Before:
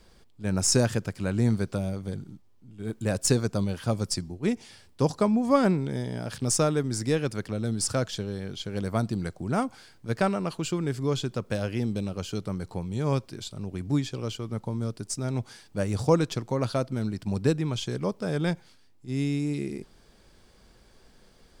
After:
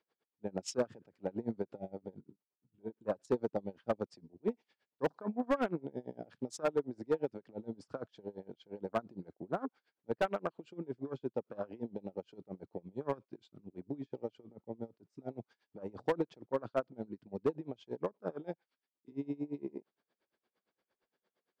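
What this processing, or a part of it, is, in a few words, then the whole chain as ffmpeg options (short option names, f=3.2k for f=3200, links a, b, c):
helicopter radio: -filter_complex "[0:a]asettb=1/sr,asplit=3[a][b][c];[a]atrim=end=18.304[d];[b]atrim=start=18.3:end=19.12,asetpts=PTS-STARTPTS,afade=t=in:d=0.004:c=qsin,afade=t=out:st=0.816:d=0.004:c=qsin,highpass=f=290:p=1[e];[c]atrim=start=19.116[f];[d][e]acrossfade=d=0.004:c1=hsin:c2=qsin[g];[g][f]acrossfade=d=0.004:c1=qsin:c2=hsin,afwtdn=0.0251,highpass=320,lowpass=3k,aeval=exprs='val(0)*pow(10,-25*(0.5-0.5*cos(2*PI*8.7*n/s))/20)':c=same,asoftclip=type=hard:threshold=-23.5dB"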